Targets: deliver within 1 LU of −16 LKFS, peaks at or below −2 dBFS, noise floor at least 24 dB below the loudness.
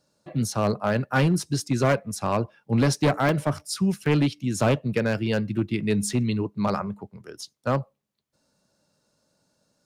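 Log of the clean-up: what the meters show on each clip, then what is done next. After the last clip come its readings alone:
share of clipped samples 1.5%; peaks flattened at −15.0 dBFS; number of dropouts 3; longest dropout 1.5 ms; integrated loudness −25.0 LKFS; sample peak −15.0 dBFS; target loudness −16.0 LKFS
→ clipped peaks rebuilt −15 dBFS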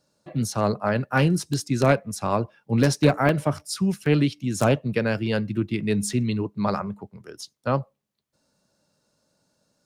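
share of clipped samples 0.0%; number of dropouts 3; longest dropout 1.5 ms
→ repair the gap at 0:03.29/0:04.06/0:06.13, 1.5 ms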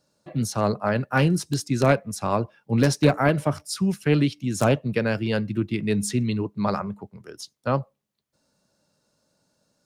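number of dropouts 0; integrated loudness −24.0 LKFS; sample peak −6.0 dBFS; target loudness −16.0 LKFS
→ level +8 dB
brickwall limiter −2 dBFS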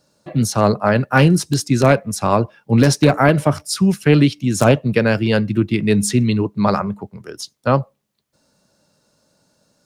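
integrated loudness −16.5 LKFS; sample peak −2.0 dBFS; background noise floor −66 dBFS

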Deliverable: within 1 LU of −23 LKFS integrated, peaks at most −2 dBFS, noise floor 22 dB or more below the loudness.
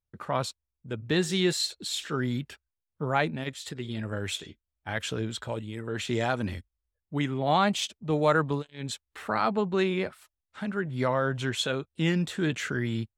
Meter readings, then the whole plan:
integrated loudness −29.5 LKFS; sample peak −10.0 dBFS; target loudness −23.0 LKFS
→ level +6.5 dB

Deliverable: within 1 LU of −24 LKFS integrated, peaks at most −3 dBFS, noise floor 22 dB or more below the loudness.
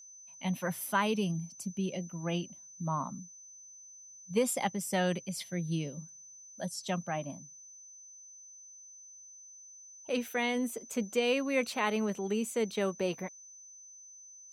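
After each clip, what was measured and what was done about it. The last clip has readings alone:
interfering tone 6,100 Hz; level of the tone −50 dBFS; integrated loudness −33.5 LKFS; sample peak −15.5 dBFS; target loudness −24.0 LKFS
→ notch filter 6,100 Hz, Q 30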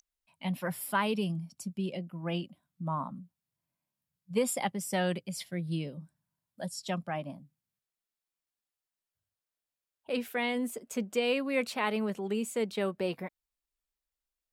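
interfering tone none found; integrated loudness −33.5 LKFS; sample peak −15.5 dBFS; target loudness −24.0 LKFS
→ level +9.5 dB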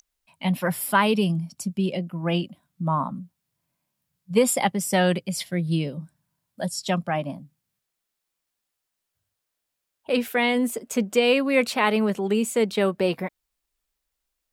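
integrated loudness −24.0 LKFS; sample peak −6.0 dBFS; background noise floor −82 dBFS

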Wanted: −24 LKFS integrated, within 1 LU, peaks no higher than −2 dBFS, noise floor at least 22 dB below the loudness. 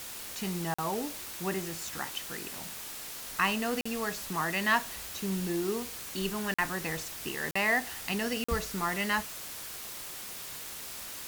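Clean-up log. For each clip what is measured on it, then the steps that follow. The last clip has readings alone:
number of dropouts 5; longest dropout 45 ms; background noise floor −42 dBFS; target noise floor −55 dBFS; integrated loudness −32.5 LKFS; sample peak −13.5 dBFS; target loudness −24.0 LKFS
→ repair the gap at 0:00.74/0:03.81/0:06.54/0:07.51/0:08.44, 45 ms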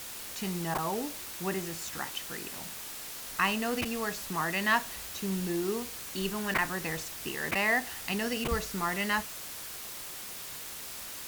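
number of dropouts 0; background noise floor −42 dBFS; target noise floor −55 dBFS
→ broadband denoise 13 dB, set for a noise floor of −42 dBFS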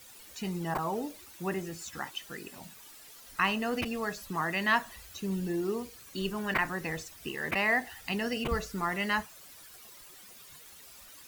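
background noise floor −52 dBFS; target noise floor −55 dBFS
→ broadband denoise 6 dB, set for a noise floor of −52 dBFS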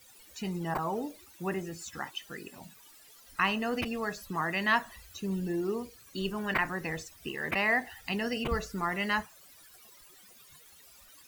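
background noise floor −56 dBFS; integrated loudness −32.5 LKFS; sample peak −14.0 dBFS; target loudness −24.0 LKFS
→ level +8.5 dB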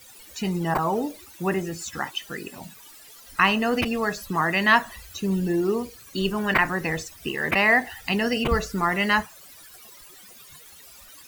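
integrated loudness −24.0 LKFS; sample peak −5.5 dBFS; background noise floor −48 dBFS

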